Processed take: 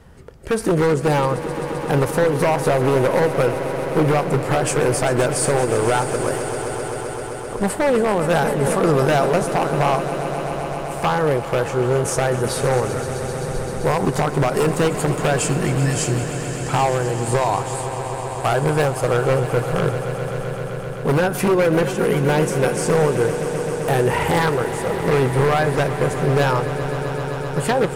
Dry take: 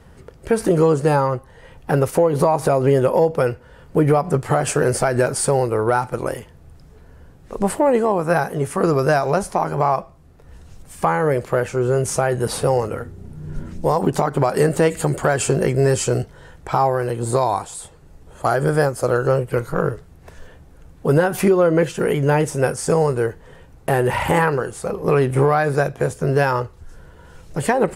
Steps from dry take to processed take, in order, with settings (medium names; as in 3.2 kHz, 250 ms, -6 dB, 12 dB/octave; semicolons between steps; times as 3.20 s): 15.48–16.37 s: spectral replace 370–1700 Hz; wavefolder -11.5 dBFS; on a send: echo with a slow build-up 130 ms, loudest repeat 5, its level -14 dB; 7.77–9.26 s: on the sum: decay stretcher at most 27 dB/s